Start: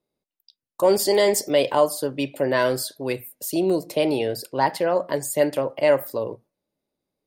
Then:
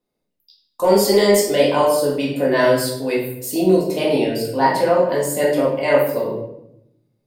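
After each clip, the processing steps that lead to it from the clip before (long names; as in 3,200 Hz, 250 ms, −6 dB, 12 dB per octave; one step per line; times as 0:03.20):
rectangular room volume 200 cubic metres, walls mixed, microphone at 1.9 metres
level −1.5 dB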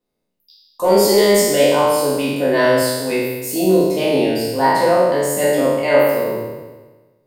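peak hold with a decay on every bin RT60 1.26 s
level −1 dB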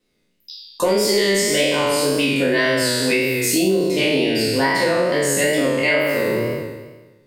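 drawn EQ curve 370 Hz 0 dB, 830 Hz −8 dB, 2,100 Hz +7 dB, 8,000 Hz +2 dB, 14,000 Hz −6 dB
downward compressor 6 to 1, threshold −24 dBFS, peak gain reduction 13.5 dB
tape wow and flutter 53 cents
level +8.5 dB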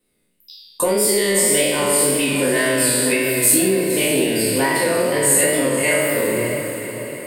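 high shelf with overshoot 7,500 Hz +7 dB, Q 3
on a send: feedback delay with all-pass diffusion 563 ms, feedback 50%, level −9 dB
on the sum: level −1 dB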